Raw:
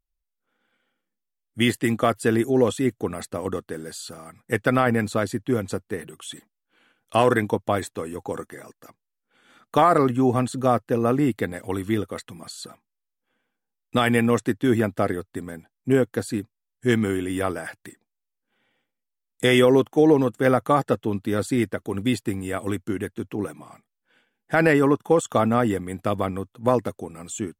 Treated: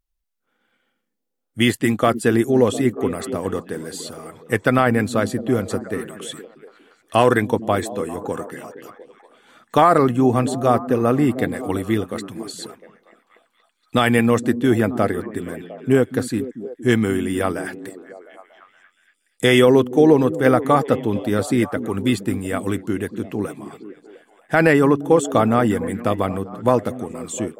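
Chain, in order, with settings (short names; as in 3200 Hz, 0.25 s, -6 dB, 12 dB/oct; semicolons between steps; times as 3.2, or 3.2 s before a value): delay with a stepping band-pass 0.235 s, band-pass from 200 Hz, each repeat 0.7 oct, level -9 dB; gain +3.5 dB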